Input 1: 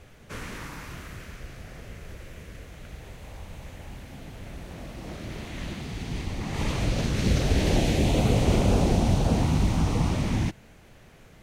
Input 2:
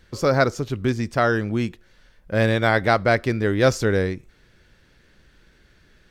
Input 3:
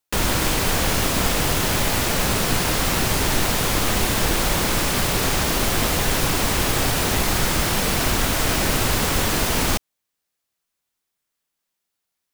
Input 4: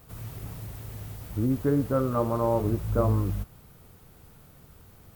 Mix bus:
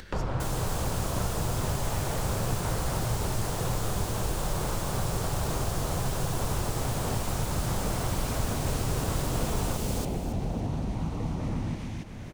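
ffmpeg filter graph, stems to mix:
ffmpeg -i stem1.wav -i stem2.wav -i stem3.wav -filter_complex "[0:a]acompressor=threshold=-25dB:ratio=6,adelay=1250,volume=-2dB,asplit=2[link_01][link_02];[link_02]volume=-6.5dB[link_03];[1:a]acrossover=split=120[link_04][link_05];[link_05]acompressor=threshold=-32dB:ratio=6[link_06];[link_04][link_06]amix=inputs=2:normalize=0,volume=-10.5dB[link_07];[2:a]equalizer=frequency=125:width_type=o:width=1:gain=6,equalizer=frequency=250:width_type=o:width=1:gain=-8,equalizer=frequency=2000:width_type=o:width=1:gain=-7,equalizer=frequency=8000:width_type=o:width=1:gain=5,volume=-3.5dB,asplit=2[link_08][link_09];[link_09]volume=-13dB[link_10];[link_01][link_08]amix=inputs=2:normalize=0,lowpass=1400,acompressor=threshold=-26dB:ratio=6,volume=0dB[link_11];[link_03][link_10]amix=inputs=2:normalize=0,aecho=0:1:276|552|828|1104:1|0.26|0.0676|0.0176[link_12];[link_07][link_11][link_12]amix=inputs=3:normalize=0,acompressor=mode=upward:threshold=-30dB:ratio=2.5" out.wav

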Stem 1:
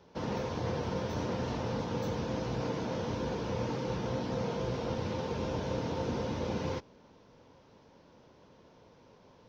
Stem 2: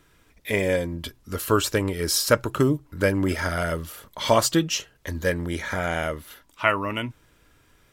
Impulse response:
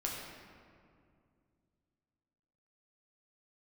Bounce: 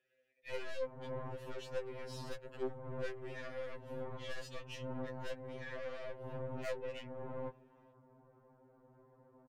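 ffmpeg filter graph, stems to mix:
-filter_complex "[0:a]lowpass=frequency=1500:width=0.5412,lowpass=frequency=1500:width=1.3066,alimiter=level_in=5dB:limit=-24dB:level=0:latency=1:release=107,volume=-5dB,adelay=700,volume=-0.5dB[link_01];[1:a]asplit=3[link_02][link_03][link_04];[link_02]bandpass=frequency=530:width_type=q:width=8,volume=0dB[link_05];[link_03]bandpass=frequency=1840:width_type=q:width=8,volume=-6dB[link_06];[link_04]bandpass=frequency=2480:width_type=q:width=8,volume=-9dB[link_07];[link_05][link_06][link_07]amix=inputs=3:normalize=0,volume=-0.5dB,asplit=2[link_08][link_09];[link_09]apad=whole_len=448960[link_10];[link_01][link_10]sidechaincompress=threshold=-48dB:ratio=5:attack=6.1:release=185[link_11];[link_11][link_08]amix=inputs=2:normalize=0,aeval=exprs='(tanh(70.8*val(0)+0.6)-tanh(0.6))/70.8':channel_layout=same,afftfilt=real='re*2.45*eq(mod(b,6),0)':imag='im*2.45*eq(mod(b,6),0)':win_size=2048:overlap=0.75"

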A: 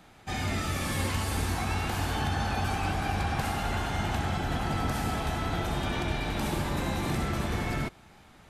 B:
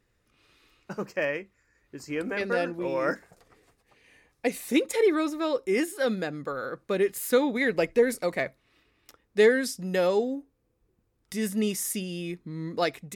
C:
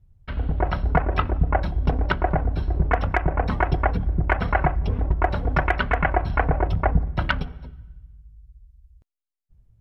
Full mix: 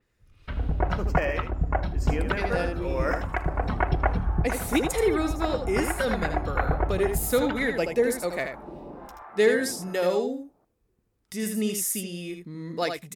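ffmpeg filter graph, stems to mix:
ffmpeg -i stem1.wav -i stem2.wav -i stem3.wav -filter_complex "[0:a]highpass=310,acrossover=split=750[link_01][link_02];[link_01]aeval=exprs='val(0)*(1-1/2+1/2*cos(2*PI*1.2*n/s))':channel_layout=same[link_03];[link_02]aeval=exprs='val(0)*(1-1/2-1/2*cos(2*PI*1.2*n/s))':channel_layout=same[link_04];[link_03][link_04]amix=inputs=2:normalize=0,lowpass=frequency=1300:width=0.5412,lowpass=frequency=1300:width=1.3066,adelay=2150,volume=-2dB,asplit=2[link_05][link_06];[link_06]volume=-15.5dB[link_07];[1:a]adynamicequalizer=threshold=0.00447:dfrequency=5400:dqfactor=0.7:tfrequency=5400:tqfactor=0.7:attack=5:release=100:ratio=0.375:range=2.5:mode=boostabove:tftype=highshelf,volume=-1.5dB,asplit=3[link_08][link_09][link_10];[link_09]volume=-6.5dB[link_11];[2:a]adelay=200,volume=-2.5dB,asplit=2[link_12][link_13];[link_13]volume=-18dB[link_14];[link_10]apad=whole_len=441176[link_15];[link_12][link_15]sidechaincompress=threshold=-28dB:ratio=8:attack=7.5:release=1390[link_16];[link_07][link_11][link_14]amix=inputs=3:normalize=0,aecho=0:1:79:1[link_17];[link_05][link_08][link_16][link_17]amix=inputs=4:normalize=0" out.wav

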